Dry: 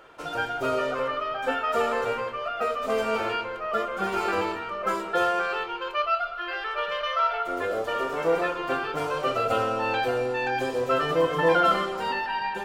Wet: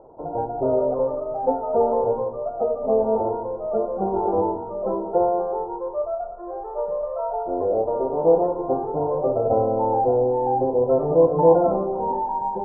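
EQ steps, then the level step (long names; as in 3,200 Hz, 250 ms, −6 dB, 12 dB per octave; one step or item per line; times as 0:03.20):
Chebyshev low-pass filter 900 Hz, order 5
+7.5 dB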